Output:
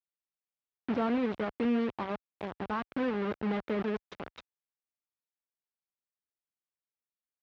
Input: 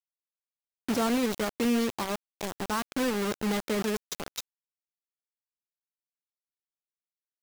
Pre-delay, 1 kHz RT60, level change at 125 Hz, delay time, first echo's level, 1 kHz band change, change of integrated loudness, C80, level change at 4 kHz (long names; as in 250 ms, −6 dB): no reverb audible, no reverb audible, −2.5 dB, no echo audible, no echo audible, −3.0 dB, −3.0 dB, no reverb audible, −12.5 dB